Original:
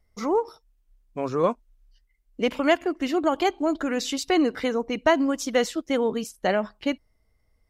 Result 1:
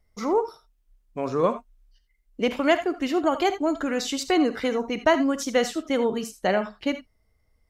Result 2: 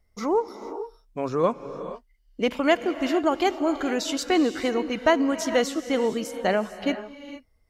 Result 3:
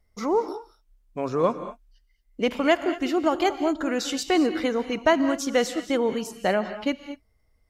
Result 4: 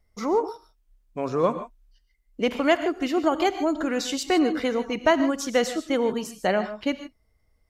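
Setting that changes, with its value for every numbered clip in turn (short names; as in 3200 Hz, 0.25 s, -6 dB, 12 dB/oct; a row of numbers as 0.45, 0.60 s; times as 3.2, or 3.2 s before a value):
non-linear reverb, gate: 0.1, 0.49, 0.25, 0.17 s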